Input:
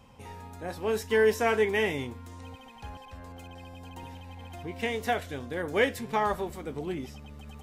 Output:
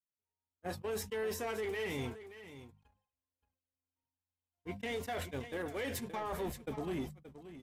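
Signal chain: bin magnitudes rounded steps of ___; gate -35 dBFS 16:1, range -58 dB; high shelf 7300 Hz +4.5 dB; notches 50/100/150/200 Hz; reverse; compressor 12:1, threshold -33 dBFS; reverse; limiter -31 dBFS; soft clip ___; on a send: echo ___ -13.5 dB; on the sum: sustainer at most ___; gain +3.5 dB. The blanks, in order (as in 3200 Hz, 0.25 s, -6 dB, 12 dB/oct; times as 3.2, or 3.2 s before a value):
15 dB, -34.5 dBFS, 0.575 s, 130 dB/s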